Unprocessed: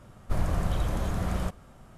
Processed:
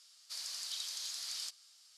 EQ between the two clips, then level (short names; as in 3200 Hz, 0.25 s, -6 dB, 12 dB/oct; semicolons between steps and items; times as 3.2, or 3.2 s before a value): ladder band-pass 5100 Hz, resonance 65%; high shelf 7400 Hz +6.5 dB; +15.0 dB